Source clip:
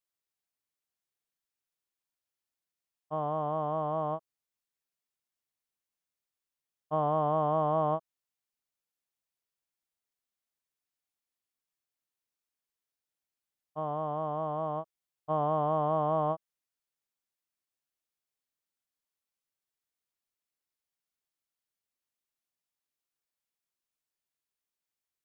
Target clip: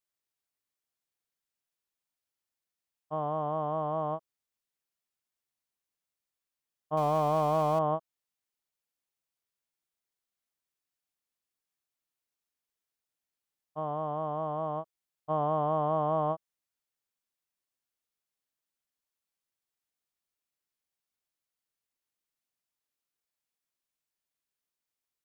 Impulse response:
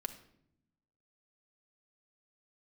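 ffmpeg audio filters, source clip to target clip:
-filter_complex "[0:a]asettb=1/sr,asplit=3[s0][s1][s2];[s0]atrim=end=6.974[s3];[s1]atrim=start=6.97:end=7.79,asetpts=PTS-STARTPTS,afade=t=in:d=0.004:c=qsin,afade=t=out:st=0.816:d=0.004:c=qsin,aeval=exprs='val(0)+0.5*0.0126*sgn(val(0))':c=same[s4];[s2]atrim=start=7.786[s5];[s3][s4]acrossfade=d=0.004:c1=hsin:c2=qsin[s6];[s6][s5]acrossfade=d=0.004:c1=qsin:c2=hsin"

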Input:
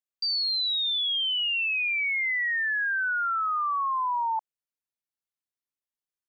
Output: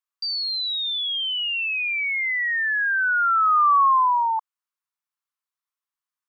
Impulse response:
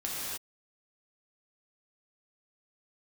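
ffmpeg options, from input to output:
-af "highpass=f=1100:t=q:w=3.4"

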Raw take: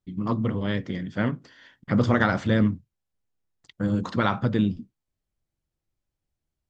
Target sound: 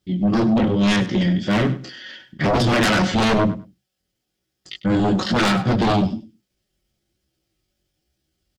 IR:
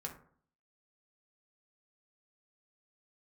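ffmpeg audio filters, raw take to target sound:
-af "highpass=49,asoftclip=type=hard:threshold=0.158,equalizer=f=160:t=o:w=0.33:g=-5,equalizer=f=315:t=o:w=0.33:g=5,equalizer=f=1000:t=o:w=0.33:g=-12,equalizer=f=3150:t=o:w=0.33:g=6,equalizer=f=5000:t=o:w=0.33:g=7,flanger=delay=15:depth=7.8:speed=1.4,aecho=1:1:5.4:0.43,atempo=0.78,aeval=exprs='0.2*sin(PI/2*3.55*val(0)/0.2)':c=same,aecho=1:1:100|200:0.168|0.0269"

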